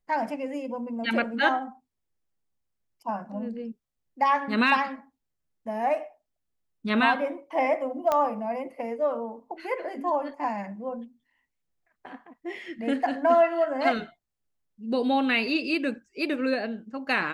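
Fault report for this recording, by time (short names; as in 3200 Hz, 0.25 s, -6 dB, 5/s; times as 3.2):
8.12 pop -12 dBFS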